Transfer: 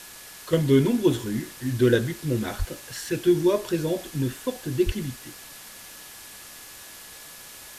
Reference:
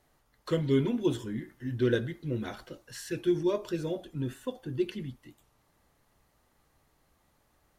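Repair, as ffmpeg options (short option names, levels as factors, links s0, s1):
-filter_complex "[0:a]bandreject=f=1700:w=30,asplit=3[s0][s1][s2];[s0]afade=t=out:st=2.58:d=0.02[s3];[s1]highpass=f=140:w=0.5412,highpass=f=140:w=1.3066,afade=t=in:st=2.58:d=0.02,afade=t=out:st=2.7:d=0.02[s4];[s2]afade=t=in:st=2.7:d=0.02[s5];[s3][s4][s5]amix=inputs=3:normalize=0,asplit=3[s6][s7][s8];[s6]afade=t=out:st=4.85:d=0.02[s9];[s7]highpass=f=140:w=0.5412,highpass=f=140:w=1.3066,afade=t=in:st=4.85:d=0.02,afade=t=out:st=4.97:d=0.02[s10];[s8]afade=t=in:st=4.97:d=0.02[s11];[s9][s10][s11]amix=inputs=3:normalize=0,afwtdn=0.0079,asetnsamples=n=441:p=0,asendcmd='0.53 volume volume -7dB',volume=1"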